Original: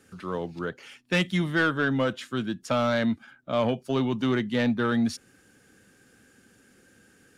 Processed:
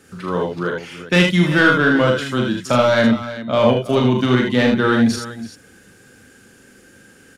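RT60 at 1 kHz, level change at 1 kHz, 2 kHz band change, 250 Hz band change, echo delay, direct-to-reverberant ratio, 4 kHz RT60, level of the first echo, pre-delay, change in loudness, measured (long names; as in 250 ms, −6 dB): no reverb audible, +10.0 dB, +11.0 dB, +9.5 dB, 40 ms, no reverb audible, no reverb audible, −4.5 dB, no reverb audible, +10.0 dB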